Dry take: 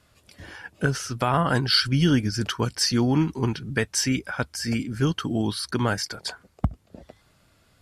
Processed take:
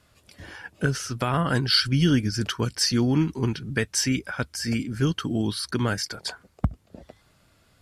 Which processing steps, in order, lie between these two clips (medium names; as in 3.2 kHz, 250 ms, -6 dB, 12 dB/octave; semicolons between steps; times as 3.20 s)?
dynamic bell 830 Hz, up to -6 dB, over -39 dBFS, Q 1.4